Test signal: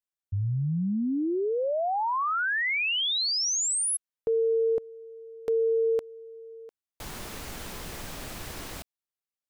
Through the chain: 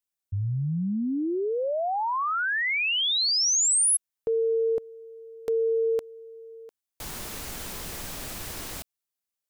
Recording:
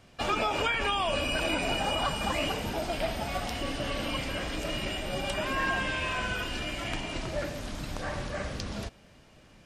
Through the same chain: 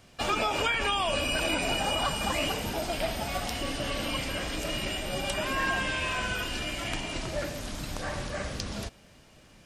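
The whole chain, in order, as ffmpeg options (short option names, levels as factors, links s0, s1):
-af "highshelf=f=5000:g=7"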